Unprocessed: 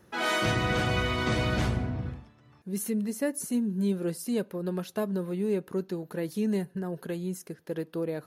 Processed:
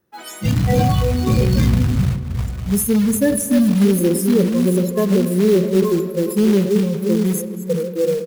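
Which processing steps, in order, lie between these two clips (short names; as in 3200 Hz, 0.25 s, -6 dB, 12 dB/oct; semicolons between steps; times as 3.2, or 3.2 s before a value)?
reverse delay 0.681 s, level -6 dB; bell 350 Hz +3 dB 0.73 oct; spectral noise reduction 27 dB; in parallel at +3 dB: limiter -25 dBFS, peak gain reduction 8.5 dB; on the sum: short-mantissa float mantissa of 2-bit; echo 0.408 s -21.5 dB; on a send at -13 dB: reverb RT60 2.8 s, pre-delay 46 ms; on the sum: dynamic EQ 7900 Hz, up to -5 dB, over -45 dBFS, Q 1.7; sustainer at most 74 dB/s; gain +7 dB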